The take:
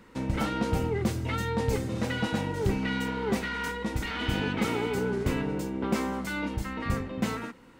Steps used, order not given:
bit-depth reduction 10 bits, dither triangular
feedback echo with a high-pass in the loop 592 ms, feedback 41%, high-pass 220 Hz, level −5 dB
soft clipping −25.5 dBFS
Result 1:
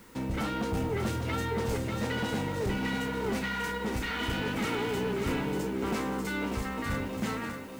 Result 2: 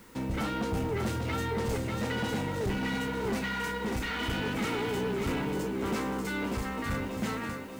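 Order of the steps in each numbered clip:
soft clipping, then bit-depth reduction, then feedback echo with a high-pass in the loop
feedback echo with a high-pass in the loop, then soft clipping, then bit-depth reduction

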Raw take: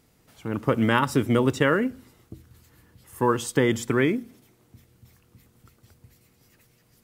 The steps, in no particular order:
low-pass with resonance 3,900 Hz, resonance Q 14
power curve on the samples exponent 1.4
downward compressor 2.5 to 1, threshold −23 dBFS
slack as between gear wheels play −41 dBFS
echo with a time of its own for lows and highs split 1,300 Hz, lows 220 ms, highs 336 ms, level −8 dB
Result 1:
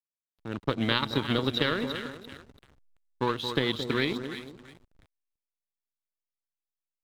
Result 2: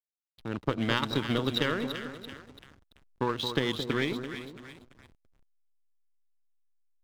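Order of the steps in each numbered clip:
echo with a time of its own for lows and highs, then power curve on the samples, then low-pass with resonance, then slack as between gear wheels, then downward compressor
low-pass with resonance, then downward compressor, then power curve on the samples, then echo with a time of its own for lows and highs, then slack as between gear wheels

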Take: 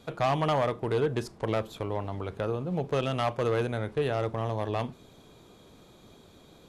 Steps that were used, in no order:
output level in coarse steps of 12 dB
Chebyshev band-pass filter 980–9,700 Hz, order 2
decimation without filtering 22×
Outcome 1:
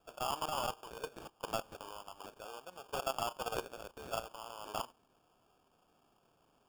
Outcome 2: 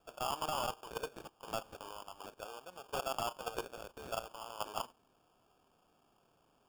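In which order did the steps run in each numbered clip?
Chebyshev band-pass filter, then output level in coarse steps, then decimation without filtering
Chebyshev band-pass filter, then decimation without filtering, then output level in coarse steps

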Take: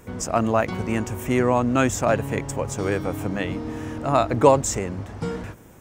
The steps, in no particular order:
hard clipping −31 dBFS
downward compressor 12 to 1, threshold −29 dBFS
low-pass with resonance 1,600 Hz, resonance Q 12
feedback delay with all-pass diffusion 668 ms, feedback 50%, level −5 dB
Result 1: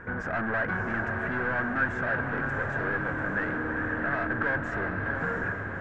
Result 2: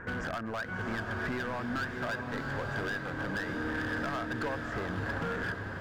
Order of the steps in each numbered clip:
hard clipping, then feedback delay with all-pass diffusion, then downward compressor, then low-pass with resonance
low-pass with resonance, then downward compressor, then hard clipping, then feedback delay with all-pass diffusion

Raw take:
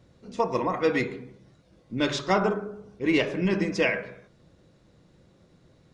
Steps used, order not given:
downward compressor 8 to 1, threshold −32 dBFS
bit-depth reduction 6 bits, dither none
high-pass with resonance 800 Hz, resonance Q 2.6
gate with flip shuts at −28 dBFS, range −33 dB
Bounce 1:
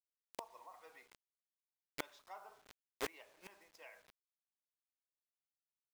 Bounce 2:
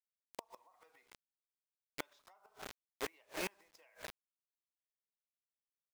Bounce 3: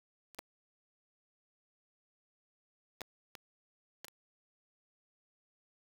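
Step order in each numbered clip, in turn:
high-pass with resonance, then bit-depth reduction, then gate with flip, then downward compressor
high-pass with resonance, then bit-depth reduction, then downward compressor, then gate with flip
downward compressor, then gate with flip, then high-pass with resonance, then bit-depth reduction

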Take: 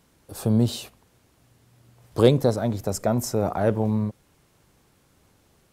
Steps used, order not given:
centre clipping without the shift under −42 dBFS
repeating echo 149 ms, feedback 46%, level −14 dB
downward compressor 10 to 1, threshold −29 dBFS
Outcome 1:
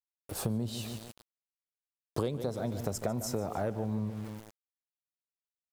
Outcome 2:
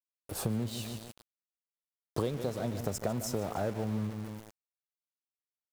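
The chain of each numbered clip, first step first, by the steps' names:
repeating echo, then centre clipping without the shift, then downward compressor
repeating echo, then downward compressor, then centre clipping without the shift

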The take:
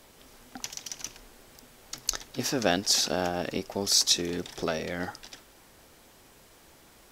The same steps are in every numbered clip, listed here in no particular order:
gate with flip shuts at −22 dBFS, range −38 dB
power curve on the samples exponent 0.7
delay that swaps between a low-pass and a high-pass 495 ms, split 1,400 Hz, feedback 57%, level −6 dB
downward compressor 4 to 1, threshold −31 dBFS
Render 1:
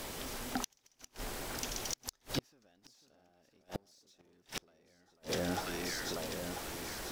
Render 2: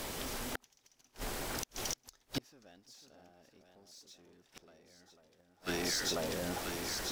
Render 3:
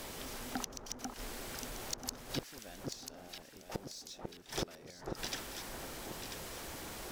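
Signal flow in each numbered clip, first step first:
downward compressor, then delay that swaps between a low-pass and a high-pass, then power curve on the samples, then gate with flip
delay that swaps between a low-pass and a high-pass, then power curve on the samples, then gate with flip, then downward compressor
gate with flip, then delay that swaps between a low-pass and a high-pass, then power curve on the samples, then downward compressor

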